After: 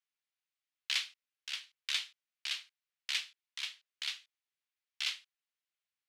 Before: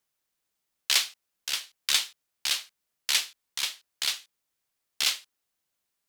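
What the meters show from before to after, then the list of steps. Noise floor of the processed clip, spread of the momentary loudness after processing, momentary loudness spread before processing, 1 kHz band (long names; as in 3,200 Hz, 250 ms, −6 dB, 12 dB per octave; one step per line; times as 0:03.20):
below −85 dBFS, 13 LU, 13 LU, −13.0 dB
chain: resonant band-pass 2,500 Hz, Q 1.1
level −6.5 dB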